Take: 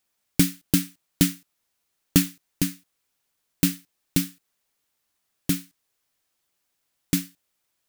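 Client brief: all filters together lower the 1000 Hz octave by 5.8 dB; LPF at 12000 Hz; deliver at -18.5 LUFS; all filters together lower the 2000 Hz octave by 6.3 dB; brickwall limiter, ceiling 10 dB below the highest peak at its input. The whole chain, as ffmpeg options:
-af "lowpass=12k,equalizer=f=1k:t=o:g=-5.5,equalizer=f=2k:t=o:g=-7,volume=14dB,alimiter=limit=0dB:level=0:latency=1"

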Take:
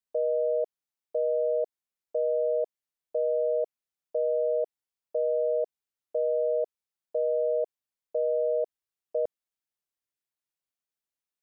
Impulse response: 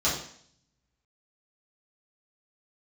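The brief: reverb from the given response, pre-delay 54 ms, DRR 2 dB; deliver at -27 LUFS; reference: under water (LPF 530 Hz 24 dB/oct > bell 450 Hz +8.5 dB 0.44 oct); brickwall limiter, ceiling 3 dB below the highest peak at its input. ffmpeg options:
-filter_complex "[0:a]alimiter=limit=-23dB:level=0:latency=1,asplit=2[a][b];[1:a]atrim=start_sample=2205,adelay=54[c];[b][c]afir=irnorm=-1:irlink=0,volume=-14dB[d];[a][d]amix=inputs=2:normalize=0,lowpass=f=530:w=0.5412,lowpass=f=530:w=1.3066,equalizer=f=450:t=o:w=0.44:g=8.5,volume=-2dB"

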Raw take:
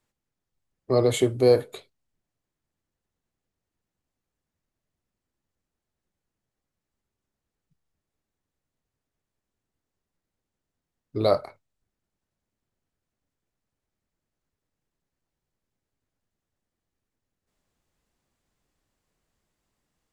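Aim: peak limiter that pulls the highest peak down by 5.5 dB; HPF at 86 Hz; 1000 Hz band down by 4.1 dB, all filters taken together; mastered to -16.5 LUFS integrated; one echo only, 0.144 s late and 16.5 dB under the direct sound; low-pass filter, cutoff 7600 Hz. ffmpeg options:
-af "highpass=86,lowpass=7.6k,equalizer=f=1k:t=o:g=-6.5,alimiter=limit=-14dB:level=0:latency=1,aecho=1:1:144:0.15,volume=10dB"

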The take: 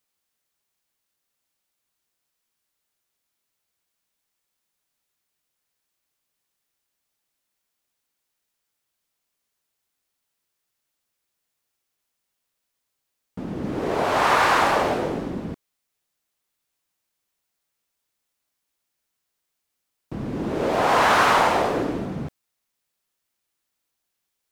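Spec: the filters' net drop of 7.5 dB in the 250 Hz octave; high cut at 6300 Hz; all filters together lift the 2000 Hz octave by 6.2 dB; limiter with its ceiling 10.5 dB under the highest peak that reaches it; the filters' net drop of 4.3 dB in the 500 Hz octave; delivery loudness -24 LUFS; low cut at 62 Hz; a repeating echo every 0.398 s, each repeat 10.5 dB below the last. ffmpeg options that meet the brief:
-af "highpass=62,lowpass=6.3k,equalizer=f=250:t=o:g=-9,equalizer=f=500:t=o:g=-4,equalizer=f=2k:t=o:g=8.5,alimiter=limit=-13dB:level=0:latency=1,aecho=1:1:398|796|1194:0.299|0.0896|0.0269,volume=-0.5dB"

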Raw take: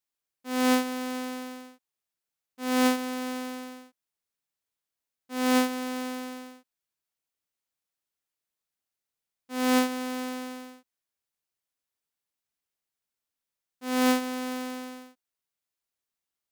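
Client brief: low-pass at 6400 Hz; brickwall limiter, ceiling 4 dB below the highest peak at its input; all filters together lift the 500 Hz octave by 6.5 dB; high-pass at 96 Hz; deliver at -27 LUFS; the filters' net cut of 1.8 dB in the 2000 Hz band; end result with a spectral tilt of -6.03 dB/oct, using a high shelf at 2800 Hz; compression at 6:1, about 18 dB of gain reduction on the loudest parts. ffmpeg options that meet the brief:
-af "highpass=96,lowpass=6.4k,equalizer=f=500:t=o:g=6.5,equalizer=f=2k:t=o:g=-6.5,highshelf=f=2.8k:g=9,acompressor=threshold=-35dB:ratio=6,volume=14.5dB,alimiter=limit=-15.5dB:level=0:latency=1"

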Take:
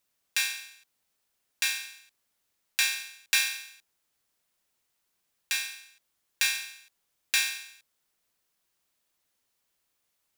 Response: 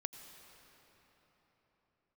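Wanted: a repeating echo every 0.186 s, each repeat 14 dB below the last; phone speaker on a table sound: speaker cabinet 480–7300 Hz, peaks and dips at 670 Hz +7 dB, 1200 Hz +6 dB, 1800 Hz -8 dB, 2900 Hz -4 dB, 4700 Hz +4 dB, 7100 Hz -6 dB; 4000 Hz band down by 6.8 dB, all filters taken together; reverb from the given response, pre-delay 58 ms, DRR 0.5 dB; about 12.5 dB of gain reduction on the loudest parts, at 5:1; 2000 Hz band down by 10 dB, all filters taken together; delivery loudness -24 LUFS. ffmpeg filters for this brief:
-filter_complex "[0:a]equalizer=f=2k:t=o:g=-6.5,equalizer=f=4k:t=o:g=-7.5,acompressor=threshold=-40dB:ratio=5,aecho=1:1:186|372:0.2|0.0399,asplit=2[a][b];[1:a]atrim=start_sample=2205,adelay=58[c];[b][c]afir=irnorm=-1:irlink=0,volume=1.5dB[d];[a][d]amix=inputs=2:normalize=0,highpass=f=480:w=0.5412,highpass=f=480:w=1.3066,equalizer=f=670:t=q:w=4:g=7,equalizer=f=1.2k:t=q:w=4:g=6,equalizer=f=1.8k:t=q:w=4:g=-8,equalizer=f=2.9k:t=q:w=4:g=-4,equalizer=f=4.7k:t=q:w=4:g=4,equalizer=f=7.1k:t=q:w=4:g=-6,lowpass=f=7.3k:w=0.5412,lowpass=f=7.3k:w=1.3066,volume=22dB"

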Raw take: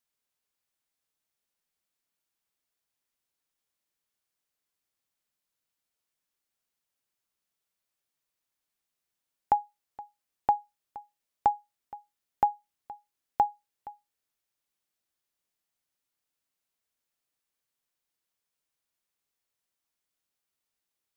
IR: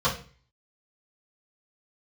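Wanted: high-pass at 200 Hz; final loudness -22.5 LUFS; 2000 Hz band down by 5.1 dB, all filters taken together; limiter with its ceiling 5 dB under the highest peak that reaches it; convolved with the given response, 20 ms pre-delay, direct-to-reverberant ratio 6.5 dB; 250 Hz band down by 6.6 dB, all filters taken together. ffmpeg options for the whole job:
-filter_complex "[0:a]highpass=200,equalizer=f=250:t=o:g=-7,equalizer=f=2k:t=o:g=-7,alimiter=limit=-18.5dB:level=0:latency=1,asplit=2[a][b];[1:a]atrim=start_sample=2205,adelay=20[c];[b][c]afir=irnorm=-1:irlink=0,volume=-21dB[d];[a][d]amix=inputs=2:normalize=0,volume=13dB"

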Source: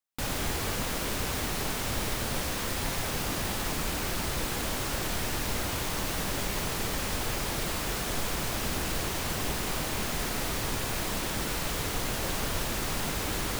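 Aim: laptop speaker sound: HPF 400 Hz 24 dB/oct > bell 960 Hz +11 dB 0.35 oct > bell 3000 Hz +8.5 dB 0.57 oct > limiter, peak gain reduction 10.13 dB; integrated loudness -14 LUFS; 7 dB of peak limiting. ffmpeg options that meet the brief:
-af "alimiter=level_in=0.5dB:limit=-24dB:level=0:latency=1,volume=-0.5dB,highpass=f=400:w=0.5412,highpass=f=400:w=1.3066,equalizer=f=960:t=o:w=0.35:g=11,equalizer=f=3k:t=o:w=0.57:g=8.5,volume=24dB,alimiter=limit=-6.5dB:level=0:latency=1"

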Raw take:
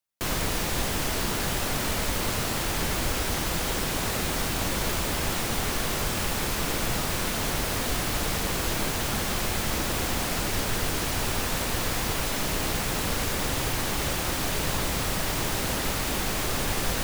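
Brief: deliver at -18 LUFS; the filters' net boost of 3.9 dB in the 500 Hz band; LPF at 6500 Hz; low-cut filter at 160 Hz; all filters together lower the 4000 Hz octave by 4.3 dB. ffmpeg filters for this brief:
-af "highpass=160,lowpass=6.5k,equalizer=f=500:t=o:g=5,equalizer=f=4k:t=o:g=-5,volume=11.5dB"

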